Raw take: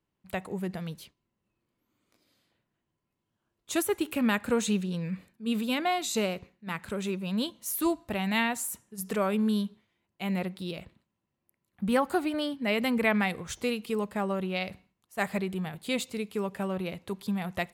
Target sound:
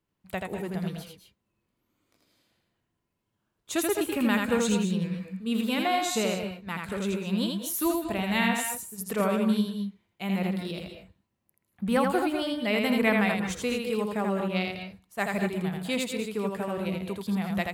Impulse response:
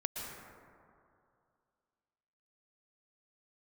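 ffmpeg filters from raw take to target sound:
-filter_complex "[0:a]asplit=2[s0][s1];[1:a]atrim=start_sample=2205,afade=t=out:st=0.21:d=0.01,atrim=end_sample=9702,adelay=82[s2];[s1][s2]afir=irnorm=-1:irlink=0,volume=0.794[s3];[s0][s3]amix=inputs=2:normalize=0"

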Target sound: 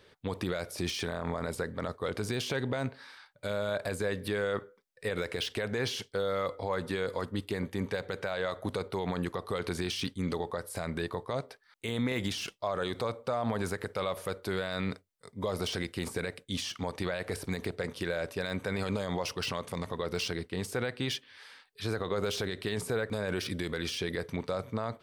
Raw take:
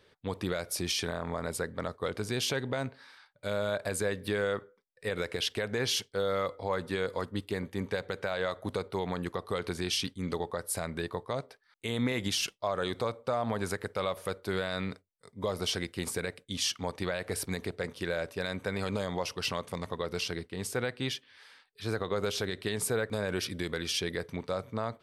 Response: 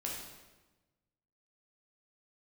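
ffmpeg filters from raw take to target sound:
-af "deesser=0.9,alimiter=level_in=1.12:limit=0.0631:level=0:latency=1:release=31,volume=0.891,volume=1.5"

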